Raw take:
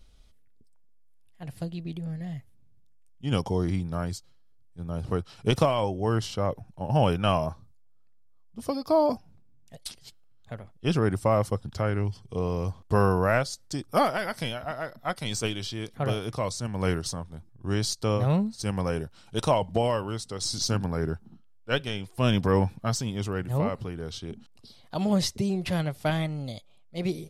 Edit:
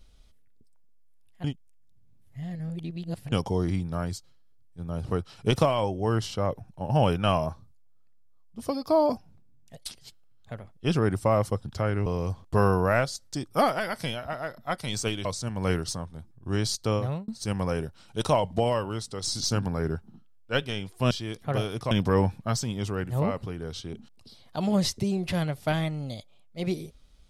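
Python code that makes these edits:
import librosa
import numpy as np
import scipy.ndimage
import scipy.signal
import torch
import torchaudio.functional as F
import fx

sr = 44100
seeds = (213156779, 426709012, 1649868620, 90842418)

y = fx.edit(x, sr, fx.reverse_span(start_s=1.44, length_s=1.88),
    fx.cut(start_s=12.06, length_s=0.38),
    fx.move(start_s=15.63, length_s=0.8, to_s=22.29),
    fx.fade_out_span(start_s=18.1, length_s=0.36), tone=tone)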